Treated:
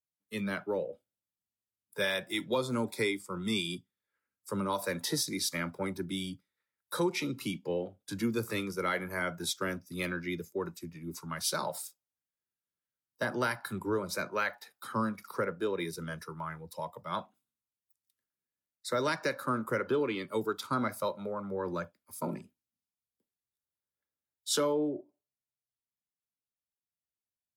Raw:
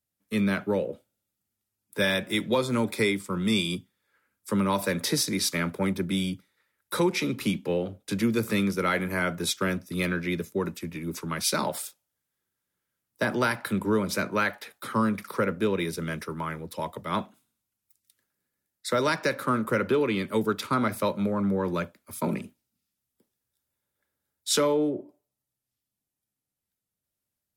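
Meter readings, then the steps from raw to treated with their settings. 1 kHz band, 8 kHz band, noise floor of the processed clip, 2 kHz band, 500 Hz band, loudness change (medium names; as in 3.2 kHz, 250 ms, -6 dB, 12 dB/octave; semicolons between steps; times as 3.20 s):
-5.5 dB, -5.5 dB, under -85 dBFS, -6.0 dB, -5.5 dB, -6.5 dB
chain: spectral noise reduction 10 dB; trim -5.5 dB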